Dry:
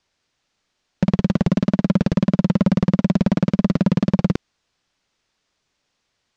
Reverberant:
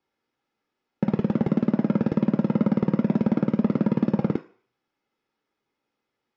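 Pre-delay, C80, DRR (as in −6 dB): 3 ms, 18.0 dB, 6.0 dB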